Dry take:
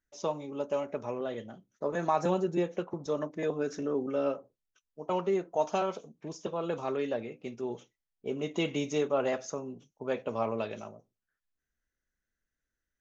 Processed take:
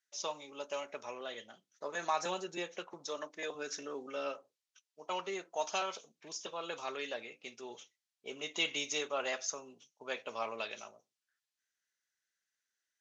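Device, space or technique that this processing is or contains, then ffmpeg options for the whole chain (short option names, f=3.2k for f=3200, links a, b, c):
piezo pickup straight into a mixer: -filter_complex "[0:a]lowpass=5.1k,aderivative,asettb=1/sr,asplit=3[a][b][c];[a]atrim=end=3.064[d];[b]atrim=start=3.06:end=3.55,asetpts=PTS-STARTPTS,afade=t=in:d=0.004:c=qsin,afade=t=out:st=0.486:d=0.004:c=qsin,highpass=190[e];[c]atrim=start=3.546[f];[d][e]acrossfade=d=0.004:c1=hsin:c2=qsin[g];[g][f]acrossfade=d=0.004:c1=qsin:c2=hsin,volume=13dB"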